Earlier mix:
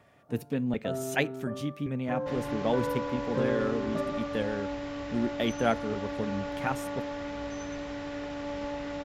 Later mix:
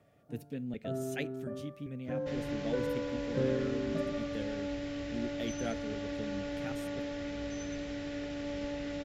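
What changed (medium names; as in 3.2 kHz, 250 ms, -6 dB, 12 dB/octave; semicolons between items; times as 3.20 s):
speech -8.5 dB; master: add peaking EQ 1 kHz -13 dB 0.88 oct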